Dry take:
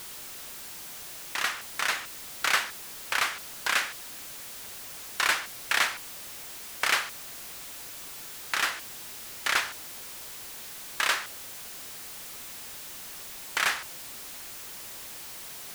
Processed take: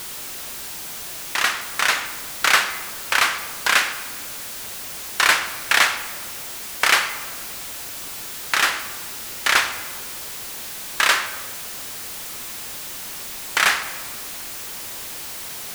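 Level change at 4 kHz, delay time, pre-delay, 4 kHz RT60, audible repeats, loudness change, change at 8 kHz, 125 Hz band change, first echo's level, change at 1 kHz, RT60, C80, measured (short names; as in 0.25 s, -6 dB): +9.0 dB, none, 11 ms, 1.0 s, none, +9.0 dB, +8.5 dB, +9.0 dB, none, +9.0 dB, 1.7 s, 12.5 dB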